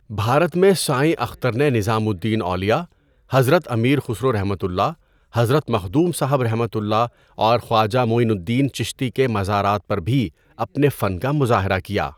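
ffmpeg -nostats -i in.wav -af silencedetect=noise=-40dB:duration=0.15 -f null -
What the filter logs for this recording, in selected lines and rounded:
silence_start: 2.86
silence_end: 3.30 | silence_duration: 0.44
silence_start: 4.94
silence_end: 5.33 | silence_duration: 0.39
silence_start: 7.08
silence_end: 7.38 | silence_duration: 0.30
silence_start: 10.29
silence_end: 10.58 | silence_duration: 0.29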